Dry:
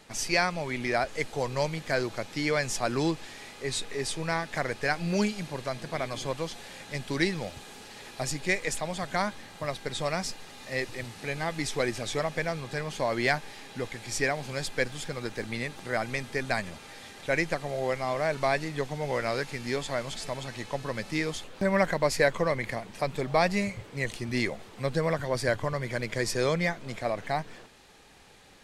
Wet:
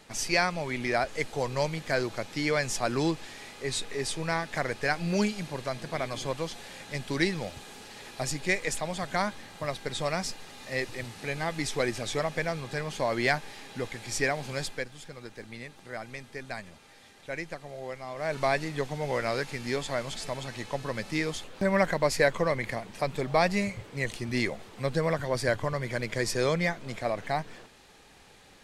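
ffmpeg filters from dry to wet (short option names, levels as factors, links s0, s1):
-filter_complex "[0:a]asplit=3[s0][s1][s2];[s0]atrim=end=14.85,asetpts=PTS-STARTPTS,afade=t=out:st=14.62:d=0.23:silence=0.354813[s3];[s1]atrim=start=14.85:end=18.15,asetpts=PTS-STARTPTS,volume=0.355[s4];[s2]atrim=start=18.15,asetpts=PTS-STARTPTS,afade=t=in:d=0.23:silence=0.354813[s5];[s3][s4][s5]concat=n=3:v=0:a=1"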